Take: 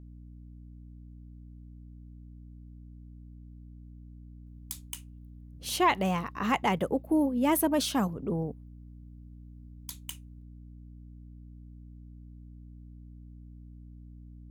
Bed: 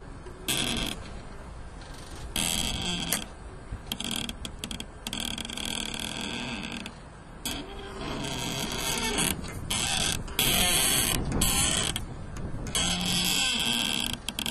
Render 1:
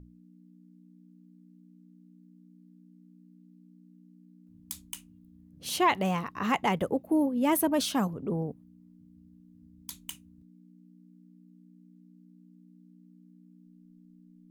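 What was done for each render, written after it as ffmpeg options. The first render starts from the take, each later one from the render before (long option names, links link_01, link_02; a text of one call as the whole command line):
ffmpeg -i in.wav -af "bandreject=frequency=60:width_type=h:width=6,bandreject=frequency=120:width_type=h:width=6" out.wav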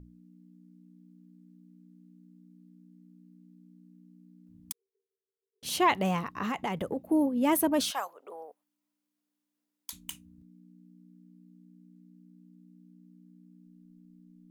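ffmpeg -i in.wav -filter_complex "[0:a]asettb=1/sr,asplit=3[link_01][link_02][link_03];[link_01]atrim=end=4.724[link_04];[link_02]atrim=start=4.72:end=5.63,asetpts=PTS-STARTPTS,afade=type=in:duration=0.004:curve=qsin,afade=type=out:start_time=0.906:duration=0.004:curve=qsin,asuperpass=centerf=420:order=20:qfactor=4[link_05];[link_03]atrim=start=5.626[link_06];[link_04][link_05]acrossfade=duration=0.004:curve1=hsin:curve2=qsin[link_07];[link_07][link_06]acrossfade=duration=0.004:curve1=qsin:curve2=hsin,asplit=3[link_08][link_09][link_10];[link_08]afade=type=out:start_time=6.26:duration=0.02[link_11];[link_09]acompressor=threshold=-28dB:ratio=6:attack=3.2:release=140:knee=1:detection=peak,afade=type=in:start_time=6.26:duration=0.02,afade=type=out:start_time=6.96:duration=0.02[link_12];[link_10]afade=type=in:start_time=6.96:duration=0.02[link_13];[link_11][link_12][link_13]amix=inputs=3:normalize=0,asettb=1/sr,asplit=3[link_14][link_15][link_16];[link_14]atrim=end=7.914[link_17];[link_15]atrim=start=7.91:end=9.93,asetpts=PTS-STARTPTS,afade=type=in:duration=0.004:curve=qsin,afade=type=out:start_time=2.016:duration=0.004:curve=qsin,highpass=frequency=610:width=0.5412,highpass=frequency=610:width=1.3066[link_18];[link_16]atrim=start=9.926[link_19];[link_17][link_18]acrossfade=duration=0.004:curve1=hsin:curve2=qsin[link_20];[link_20][link_19]acrossfade=duration=0.004:curve1=qsin:curve2=hsin" out.wav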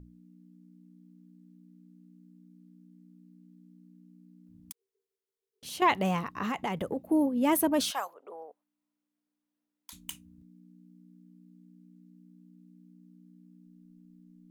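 ffmpeg -i in.wav -filter_complex "[0:a]asettb=1/sr,asplit=3[link_01][link_02][link_03];[link_01]atrim=end=4.594[link_04];[link_02]atrim=start=4.59:end=5.82,asetpts=PTS-STARTPTS,afade=type=in:duration=0.004:curve=qsin,afade=type=out:start_time=1.226:duration=0.004:curve=qsin,acompressor=threshold=-50dB:ratio=1.5:attack=3.2:release=140:knee=1:detection=peak[link_05];[link_03]atrim=start=5.816[link_06];[link_04][link_05]acrossfade=duration=0.004:curve1=hsin:curve2=qsin[link_07];[link_07][link_06]acrossfade=duration=0.004:curve1=qsin:curve2=hsin,asettb=1/sr,asplit=3[link_08][link_09][link_10];[link_08]atrim=end=8.144[link_11];[link_09]atrim=start=8.14:end=9.92,asetpts=PTS-STARTPTS,afade=type=in:duration=0.004:curve=qsin,afade=type=out:start_time=1.776:duration=0.004:curve=qsin,highshelf=frequency=2900:gain=-10[link_12];[link_10]atrim=start=9.916[link_13];[link_11][link_12]acrossfade=duration=0.004:curve1=hsin:curve2=qsin[link_14];[link_14][link_13]acrossfade=duration=0.004:curve1=qsin:curve2=hsin" out.wav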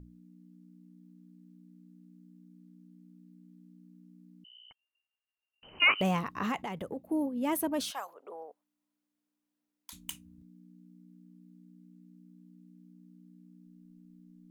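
ffmpeg -i in.wav -filter_complex "[0:a]asettb=1/sr,asplit=3[link_01][link_02][link_03];[link_01]atrim=end=4.444[link_04];[link_02]atrim=start=4.44:end=6.01,asetpts=PTS-STARTPTS,afade=type=in:duration=0.004:curve=qsin,afade=type=out:start_time=1.566:duration=0.004:curve=qsin,lowpass=frequency=2700:width_type=q:width=0.5098,lowpass=frequency=2700:width_type=q:width=0.6013,lowpass=frequency=2700:width_type=q:width=0.9,lowpass=frequency=2700:width_type=q:width=2.563,afreqshift=-3200[link_05];[link_03]atrim=start=6.006[link_06];[link_04][link_05]acrossfade=duration=0.004:curve1=hsin:curve2=qsin[link_07];[link_07][link_06]acrossfade=duration=0.004:curve1=qsin:curve2=hsin,asplit=3[link_08][link_09][link_10];[link_08]atrim=end=6.622[link_11];[link_09]atrim=start=6.618:end=8.082,asetpts=PTS-STARTPTS,volume=-5.5dB[link_12];[link_10]atrim=start=8.078[link_13];[link_11][link_12]acrossfade=duration=0.004:curve1=hsin:curve2=hsin[link_14];[link_14][link_13]acrossfade=duration=0.004:curve1=hsin:curve2=hsin" out.wav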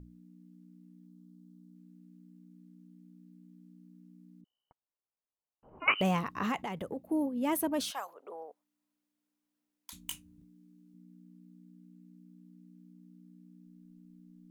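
ffmpeg -i in.wav -filter_complex "[0:a]asettb=1/sr,asplit=3[link_01][link_02][link_03];[link_01]atrim=end=1.064[link_04];[link_02]atrim=start=1.06:end=1.76,asetpts=PTS-STARTPTS,afade=type=in:duration=0.004:curve=qsin,afade=type=out:start_time=0.696:duration=0.004:curve=qsin,asuperstop=centerf=2100:order=4:qfactor=1.3[link_05];[link_03]atrim=start=1.756[link_06];[link_04][link_05]acrossfade=duration=0.004:curve1=hsin:curve2=qsin[link_07];[link_07][link_06]acrossfade=duration=0.004:curve1=qsin:curve2=hsin,asettb=1/sr,asplit=3[link_08][link_09][link_10];[link_08]atrim=end=4.414[link_11];[link_09]atrim=start=4.41:end=5.88,asetpts=PTS-STARTPTS,afade=type=in:duration=0.004:curve=qsin,afade=type=out:start_time=1.466:duration=0.004:curve=qsin,lowpass=frequency=1100:width=0.5412,lowpass=frequency=1100:width=1.3066[link_12];[link_10]atrim=start=5.876[link_13];[link_11][link_12]acrossfade=duration=0.004:curve1=hsin:curve2=qsin[link_14];[link_14][link_13]acrossfade=duration=0.004:curve1=qsin:curve2=hsin,asettb=1/sr,asplit=3[link_15][link_16][link_17];[link_15]atrim=end=10.044[link_18];[link_16]atrim=start=10.04:end=10.94,asetpts=PTS-STARTPTS,afade=type=in:duration=0.004:curve=qsin,afade=type=out:start_time=0.896:duration=0.004:curve=qsin,asplit=2[link_19][link_20];[link_20]adelay=19,volume=-5dB[link_21];[link_19][link_21]amix=inputs=2:normalize=0,atrim=end_sample=39690[link_22];[link_17]atrim=start=10.936[link_23];[link_18][link_22]acrossfade=duration=0.004:curve1=hsin:curve2=qsin[link_24];[link_24][link_23]acrossfade=duration=0.004:curve1=qsin:curve2=hsin" out.wav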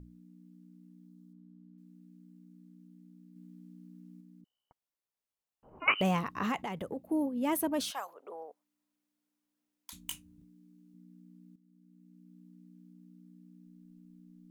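ffmpeg -i in.wav -filter_complex "[0:a]asettb=1/sr,asplit=3[link_01][link_02][link_03];[link_01]atrim=end=1.334[link_04];[link_02]atrim=start=1.33:end=1.78,asetpts=PTS-STARTPTS,afade=type=in:duration=0.004:curve=qsin,afade=type=out:start_time=0.446:duration=0.004:curve=qsin,lowpass=2600[link_05];[link_03]atrim=start=1.776[link_06];[link_04][link_05]acrossfade=duration=0.004:curve1=hsin:curve2=qsin[link_07];[link_07][link_06]acrossfade=duration=0.004:curve1=qsin:curve2=hsin,asplit=4[link_08][link_09][link_10][link_11];[link_08]atrim=end=3.362[link_12];[link_09]atrim=start=3.358:end=4.212,asetpts=PTS-STARTPTS,volume=4dB[link_13];[link_10]atrim=start=4.208:end=11.56,asetpts=PTS-STARTPTS,afade=type=out:start_time=7.348:duration=0.004:curve=hsin:silence=0.211349[link_14];[link_11]atrim=start=11.56,asetpts=PTS-STARTPTS,afade=type=in:duration=0.82:silence=0.211349[link_15];[link_12][link_13]acrossfade=duration=0.004:curve1=hsin:curve2=hsin[link_16];[link_14][link_15]concat=n=2:v=0:a=1[link_17];[link_16][link_17]acrossfade=duration=0.004:curve1=hsin:curve2=hsin" out.wav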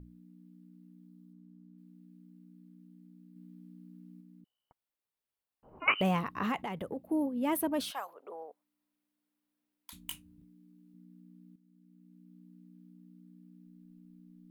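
ffmpeg -i in.wav -af "equalizer=frequency=6500:width_type=o:width=0.74:gain=-7.5" out.wav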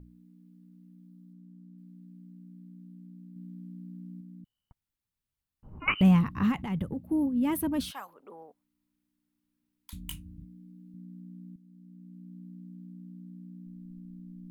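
ffmpeg -i in.wav -af "bandreject=frequency=680:width=12,asubboost=boost=10:cutoff=160" out.wav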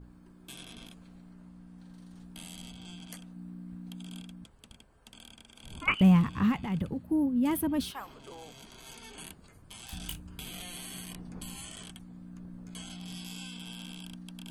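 ffmpeg -i in.wav -i bed.wav -filter_complex "[1:a]volume=-19.5dB[link_01];[0:a][link_01]amix=inputs=2:normalize=0" out.wav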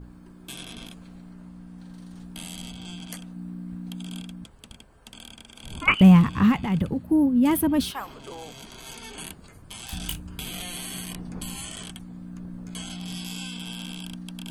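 ffmpeg -i in.wav -af "volume=7.5dB" out.wav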